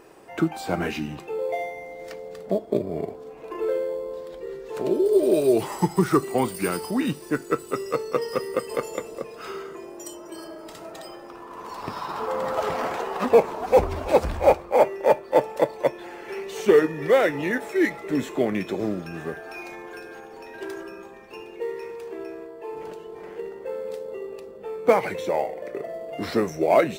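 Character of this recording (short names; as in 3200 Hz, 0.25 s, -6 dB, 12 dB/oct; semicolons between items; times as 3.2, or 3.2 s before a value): noise floor -42 dBFS; spectral tilt -5.0 dB/oct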